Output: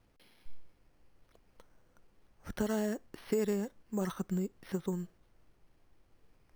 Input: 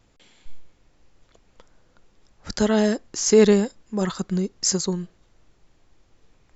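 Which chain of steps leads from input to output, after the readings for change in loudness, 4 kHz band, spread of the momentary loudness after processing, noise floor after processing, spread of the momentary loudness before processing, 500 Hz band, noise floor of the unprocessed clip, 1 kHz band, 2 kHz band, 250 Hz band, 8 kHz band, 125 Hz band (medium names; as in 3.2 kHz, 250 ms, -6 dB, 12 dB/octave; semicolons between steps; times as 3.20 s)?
-14.5 dB, -22.5 dB, 11 LU, -69 dBFS, 13 LU, -15.0 dB, -61 dBFS, -12.5 dB, -14.0 dB, -13.0 dB, no reading, -11.0 dB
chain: careless resampling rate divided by 6×, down filtered, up hold; compression 4:1, threshold -22 dBFS, peak gain reduction 10.5 dB; trim -7.5 dB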